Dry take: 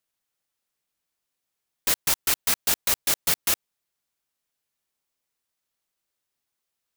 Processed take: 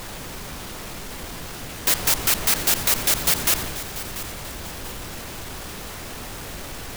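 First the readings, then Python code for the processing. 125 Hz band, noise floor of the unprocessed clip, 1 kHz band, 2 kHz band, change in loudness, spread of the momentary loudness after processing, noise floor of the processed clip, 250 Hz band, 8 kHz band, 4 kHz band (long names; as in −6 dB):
+13.5 dB, −83 dBFS, +6.5 dB, +5.0 dB, +1.5 dB, 16 LU, −35 dBFS, +10.5 dB, +4.0 dB, +4.5 dB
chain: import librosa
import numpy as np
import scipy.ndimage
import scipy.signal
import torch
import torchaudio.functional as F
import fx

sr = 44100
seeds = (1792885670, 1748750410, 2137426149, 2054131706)

y = fx.dmg_noise_colour(x, sr, seeds[0], colour='pink', level_db=-45.0)
y = fx.power_curve(y, sr, exponent=0.7)
y = fx.transient(y, sr, attack_db=1, sustain_db=6)
y = fx.echo_feedback(y, sr, ms=688, feedback_pct=40, wet_db=-14.0)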